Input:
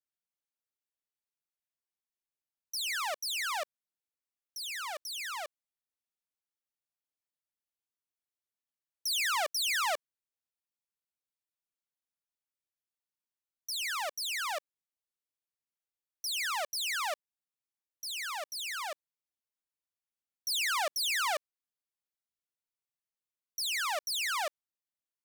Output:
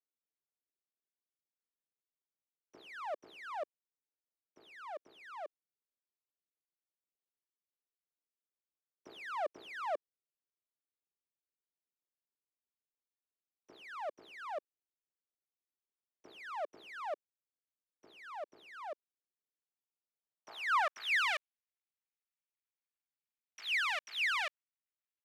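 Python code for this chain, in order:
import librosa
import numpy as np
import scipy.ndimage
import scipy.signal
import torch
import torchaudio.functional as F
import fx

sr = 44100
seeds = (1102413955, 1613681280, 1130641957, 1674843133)

y = scipy.ndimage.median_filter(x, 9, mode='constant')
y = fx.filter_sweep_bandpass(y, sr, from_hz=380.0, to_hz=2300.0, start_s=20.02, end_s=21.22, q=1.6)
y = y * 10.0 ** (5.0 / 20.0)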